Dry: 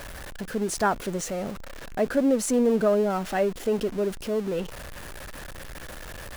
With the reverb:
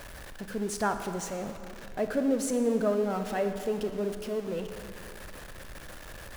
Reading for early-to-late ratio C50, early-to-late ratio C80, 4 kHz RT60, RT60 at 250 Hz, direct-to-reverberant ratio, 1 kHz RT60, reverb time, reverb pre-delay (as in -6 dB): 8.0 dB, 9.0 dB, 1.7 s, 2.4 s, 7.0 dB, 2.5 s, 2.5 s, 26 ms